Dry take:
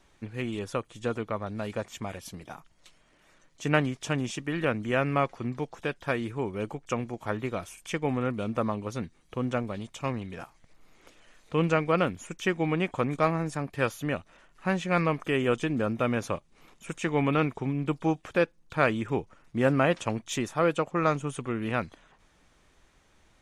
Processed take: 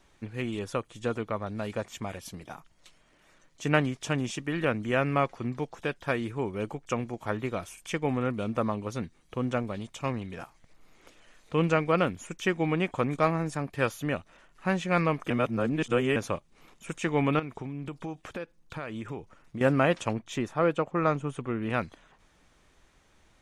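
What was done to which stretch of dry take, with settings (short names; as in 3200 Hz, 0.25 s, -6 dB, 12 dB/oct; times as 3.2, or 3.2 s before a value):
15.3–16.16 reverse
17.39–19.61 compressor, threshold -33 dBFS
20.13–21.7 high shelf 3700 Hz -11 dB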